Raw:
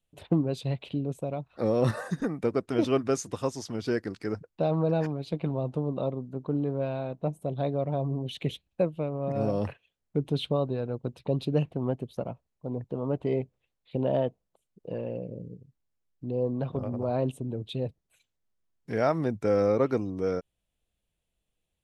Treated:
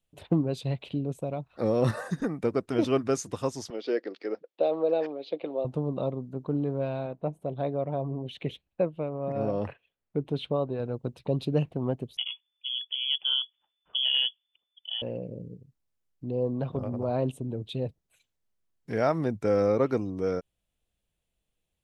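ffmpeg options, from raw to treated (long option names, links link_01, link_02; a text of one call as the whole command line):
ffmpeg -i in.wav -filter_complex "[0:a]asettb=1/sr,asplit=3[link_01][link_02][link_03];[link_01]atrim=end=3.704[link_04];[link_02]atrim=start=3.7:end=5.65,asetpts=PTS-STARTPTS,afade=type=in:duration=0.004:curve=qsin,afade=type=out:start_time=1.946:duration=0.004:curve=qsin,highpass=frequency=310:width=0.5412,highpass=frequency=310:width=1.3066,equalizer=frequency=530:width_type=q:width=4:gain=6,equalizer=frequency=1000:width_type=q:width=4:gain=-6,equalizer=frequency=1500:width_type=q:width=4:gain=-6,equalizer=frequency=3400:width_type=q:width=4:gain=3,lowpass=frequency=4500:width=0.5412,lowpass=frequency=4500:width=1.3066[link_05];[link_03]atrim=start=5.646[link_06];[link_04][link_05]acrossfade=duration=0.004:curve1=hsin:curve2=qsin[link_07];[link_07][link_06]acrossfade=duration=0.004:curve1=qsin:curve2=hsin,asettb=1/sr,asplit=3[link_08][link_09][link_10];[link_08]atrim=end=7.064[link_11];[link_09]atrim=start=7.06:end=10.8,asetpts=PTS-STARTPTS,afade=type=in:duration=0.004:curve=qsin,afade=type=out:start_time=3.736:duration=0.004:curve=qsin,bass=frequency=250:gain=-4,treble=frequency=4000:gain=-12[link_12];[link_10]atrim=start=10.796[link_13];[link_11][link_12]acrossfade=duration=0.004:curve1=hsin:curve2=qsin[link_14];[link_14][link_13]acrossfade=duration=0.004:curve1=qsin:curve2=hsin,asettb=1/sr,asplit=3[link_15][link_16][link_17];[link_15]atrim=end=12.174[link_18];[link_16]atrim=start=12.17:end=15.02,asetpts=PTS-STARTPTS,afade=type=in:duration=0.004:curve=qsin,afade=type=out:start_time=2.846:duration=0.004:curve=qsin,lowpass=frequency=3000:width_type=q:width=0.5098,lowpass=frequency=3000:width_type=q:width=0.6013,lowpass=frequency=3000:width_type=q:width=0.9,lowpass=frequency=3000:width_type=q:width=2.563,afreqshift=-3500[link_19];[link_17]atrim=start=15.016[link_20];[link_18][link_19]acrossfade=duration=0.004:curve1=hsin:curve2=qsin[link_21];[link_21][link_20]acrossfade=duration=0.004:curve1=qsin:curve2=hsin" out.wav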